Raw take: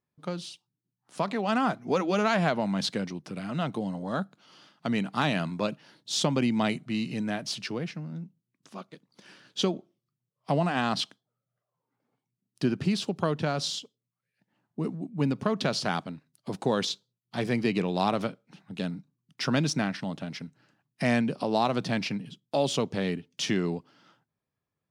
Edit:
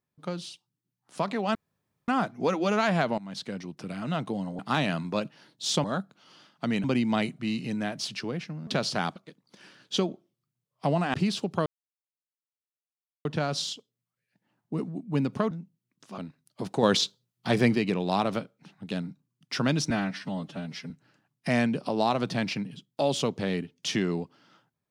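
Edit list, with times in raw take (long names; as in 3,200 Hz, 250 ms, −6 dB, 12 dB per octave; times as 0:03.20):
0:01.55: splice in room tone 0.53 s
0:02.65–0:03.31: fade in, from −17 dB
0:04.06–0:05.06: move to 0:06.31
0:08.14–0:08.81: swap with 0:15.57–0:16.06
0:10.79–0:12.79: remove
0:13.31: splice in silence 1.59 s
0:16.71–0:17.63: clip gain +5.5 dB
0:19.78–0:20.45: time-stretch 1.5×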